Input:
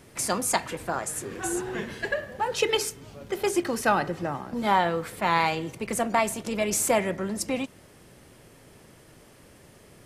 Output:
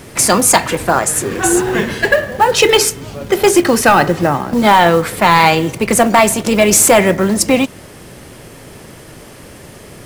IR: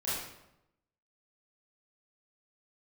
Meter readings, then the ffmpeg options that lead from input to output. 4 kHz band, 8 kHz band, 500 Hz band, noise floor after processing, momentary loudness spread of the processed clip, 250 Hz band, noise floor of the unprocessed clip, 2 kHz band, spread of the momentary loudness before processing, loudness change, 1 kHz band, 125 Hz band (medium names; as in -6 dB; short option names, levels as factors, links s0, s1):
+15.5 dB, +16.5 dB, +15.0 dB, -37 dBFS, 7 LU, +16.0 dB, -53 dBFS, +15.0 dB, 9 LU, +15.0 dB, +14.0 dB, +16.0 dB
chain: -af "acrusher=bits=6:mode=log:mix=0:aa=0.000001,apsyclip=7.94,volume=0.841"